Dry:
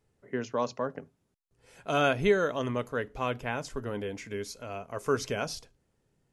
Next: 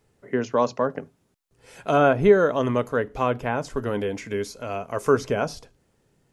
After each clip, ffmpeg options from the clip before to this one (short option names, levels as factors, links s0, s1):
-filter_complex "[0:a]lowshelf=f=110:g=-4.5,acrossover=split=1500[s0][s1];[s1]acompressor=threshold=0.00447:ratio=6[s2];[s0][s2]amix=inputs=2:normalize=0,volume=2.82"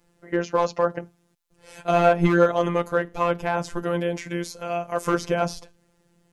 -filter_complex "[0:a]asplit=2[s0][s1];[s1]aeval=exprs='0.2*(abs(mod(val(0)/0.2+3,4)-2)-1)':c=same,volume=0.398[s2];[s0][s2]amix=inputs=2:normalize=0,afftfilt=real='hypot(re,im)*cos(PI*b)':imag='0':win_size=1024:overlap=0.75,volume=1.33"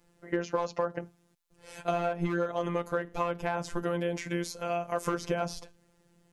-af "acompressor=threshold=0.0708:ratio=10,volume=0.794"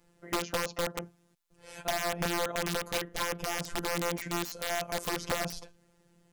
-af "aeval=exprs='(mod(13.3*val(0)+1,2)-1)/13.3':c=same"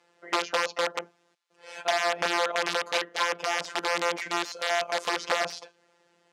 -af "aeval=exprs='0.0794*(cos(1*acos(clip(val(0)/0.0794,-1,1)))-cos(1*PI/2))+0.00158*(cos(8*acos(clip(val(0)/0.0794,-1,1)))-cos(8*PI/2))':c=same,highpass=530,lowpass=5100,volume=2.37"